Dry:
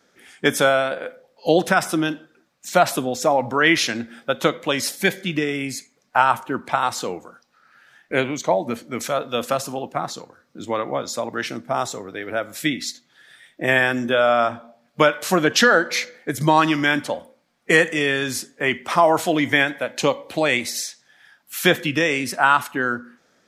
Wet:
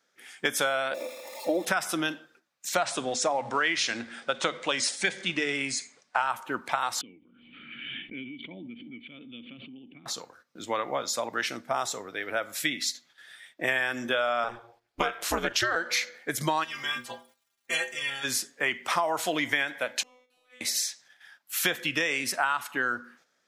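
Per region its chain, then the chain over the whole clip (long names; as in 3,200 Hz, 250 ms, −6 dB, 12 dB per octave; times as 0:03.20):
0:00.94–0:01.65: spike at every zero crossing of −10 dBFS + moving average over 29 samples + comb filter 3.4 ms, depth 91%
0:02.75–0:06.27: mu-law and A-law mismatch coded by mu + Butterworth low-pass 9,600 Hz 96 dB per octave + mains-hum notches 50/100/150/200/250 Hz
0:07.01–0:10.06: formant resonators in series i + parametric band 680 Hz −12.5 dB 1.5 octaves + background raised ahead of every attack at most 24 dB per second
0:14.44–0:15.76: low-shelf EQ 120 Hz +10.5 dB + ring modulation 120 Hz
0:16.63–0:18.23: ceiling on every frequency bin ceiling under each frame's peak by 14 dB + surface crackle 560 per second −42 dBFS + stiff-string resonator 120 Hz, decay 0.28 s, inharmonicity 0.008
0:20.03–0:20.61: downward compressor 16 to 1, threshold −26 dBFS + tuned comb filter 250 Hz, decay 1 s, mix 100%
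whole clip: noise gate −53 dBFS, range −9 dB; low-shelf EQ 500 Hz −12 dB; downward compressor 6 to 1, threshold −23 dBFS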